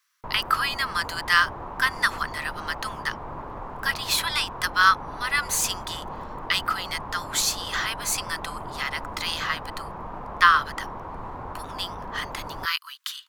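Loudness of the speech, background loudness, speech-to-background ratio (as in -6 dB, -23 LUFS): -25.0 LUFS, -37.0 LUFS, 12.0 dB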